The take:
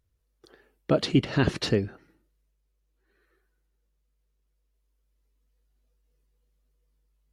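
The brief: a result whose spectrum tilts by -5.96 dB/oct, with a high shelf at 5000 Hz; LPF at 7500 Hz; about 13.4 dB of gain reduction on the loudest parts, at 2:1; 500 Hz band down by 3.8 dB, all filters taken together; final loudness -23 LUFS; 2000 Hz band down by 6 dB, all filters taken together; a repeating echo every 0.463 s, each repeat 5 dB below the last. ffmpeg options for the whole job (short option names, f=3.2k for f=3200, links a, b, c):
-af "lowpass=7.5k,equalizer=f=500:t=o:g=-4.5,equalizer=f=2k:t=o:g=-6.5,highshelf=f=5k:g=-8,acompressor=threshold=-43dB:ratio=2,aecho=1:1:463|926|1389|1852|2315|2778|3241:0.562|0.315|0.176|0.0988|0.0553|0.031|0.0173,volume=18dB"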